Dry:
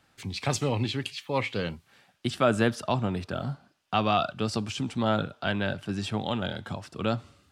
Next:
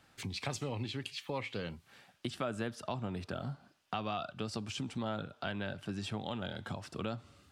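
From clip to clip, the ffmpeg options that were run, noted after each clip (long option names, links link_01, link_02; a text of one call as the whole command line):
ffmpeg -i in.wav -af "acompressor=threshold=-38dB:ratio=3" out.wav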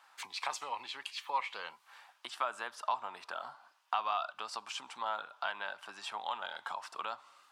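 ffmpeg -i in.wav -af "highpass=frequency=970:width_type=q:width=3.8" out.wav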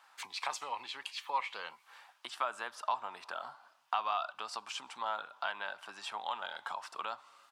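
ffmpeg -i in.wav -filter_complex "[0:a]asplit=2[link_01][link_02];[link_02]adelay=344,volume=-30dB,highshelf=frequency=4000:gain=-7.74[link_03];[link_01][link_03]amix=inputs=2:normalize=0" out.wav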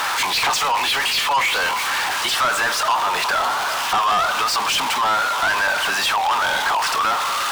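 ffmpeg -i in.wav -filter_complex "[0:a]aeval=exprs='val(0)+0.5*0.0119*sgn(val(0))':channel_layout=same,asplit=2[link_01][link_02];[link_02]highpass=frequency=720:poles=1,volume=25dB,asoftclip=type=tanh:threshold=-17dB[link_03];[link_01][link_03]amix=inputs=2:normalize=0,lowpass=frequency=5700:poles=1,volume=-6dB,volume=6dB" out.wav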